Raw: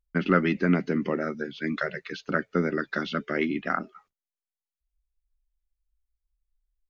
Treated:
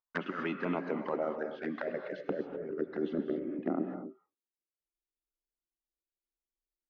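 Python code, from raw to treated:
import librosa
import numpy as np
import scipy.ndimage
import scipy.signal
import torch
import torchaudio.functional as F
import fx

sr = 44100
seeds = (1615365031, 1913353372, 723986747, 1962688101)

y = fx.filter_sweep_bandpass(x, sr, from_hz=1000.0, to_hz=340.0, start_s=0.93, end_s=3.24, q=3.1)
y = fx.over_compress(y, sr, threshold_db=-38.0, ratio=-1.0)
y = fx.env_flanger(y, sr, rest_ms=8.8, full_db=-35.0)
y = fx.rev_gated(y, sr, seeds[0], gate_ms=280, shape='rising', drr_db=6.5)
y = y * 10.0 ** (6.5 / 20.0)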